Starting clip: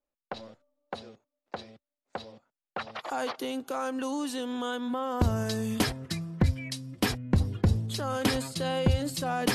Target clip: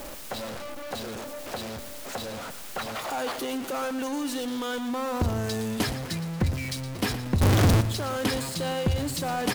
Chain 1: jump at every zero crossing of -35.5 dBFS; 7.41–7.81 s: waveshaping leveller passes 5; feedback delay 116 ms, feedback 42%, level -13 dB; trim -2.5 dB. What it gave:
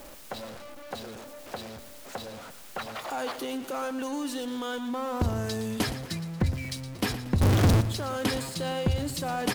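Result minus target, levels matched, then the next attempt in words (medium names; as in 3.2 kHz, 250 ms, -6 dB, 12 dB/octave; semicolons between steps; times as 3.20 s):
jump at every zero crossing: distortion -6 dB
jump at every zero crossing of -28.5 dBFS; 7.41–7.81 s: waveshaping leveller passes 5; feedback delay 116 ms, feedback 42%, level -13 dB; trim -2.5 dB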